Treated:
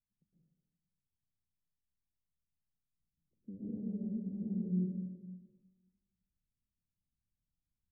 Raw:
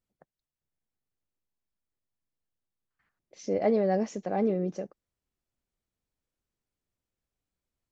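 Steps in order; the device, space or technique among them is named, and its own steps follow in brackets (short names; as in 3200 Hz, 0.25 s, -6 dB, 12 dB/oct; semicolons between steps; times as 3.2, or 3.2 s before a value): club heard from the street (limiter -22 dBFS, peak gain reduction 7.5 dB; LPF 220 Hz 24 dB/oct; reverb RT60 1.3 s, pre-delay 0.107 s, DRR -7 dB); gain -7 dB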